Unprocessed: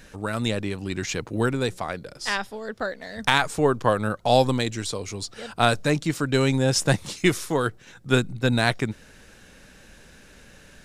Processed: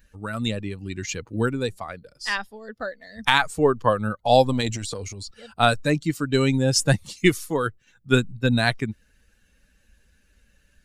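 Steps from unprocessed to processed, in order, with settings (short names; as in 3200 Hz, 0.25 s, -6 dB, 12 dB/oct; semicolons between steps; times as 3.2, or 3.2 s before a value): per-bin expansion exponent 1.5; 4.52–5.31 transient shaper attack -10 dB, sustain +9 dB; gain +3.5 dB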